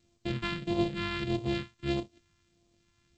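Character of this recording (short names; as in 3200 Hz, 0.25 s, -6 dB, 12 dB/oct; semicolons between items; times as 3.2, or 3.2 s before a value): a buzz of ramps at a fixed pitch in blocks of 128 samples; phasing stages 2, 1.6 Hz, lowest notch 530–1500 Hz; G.722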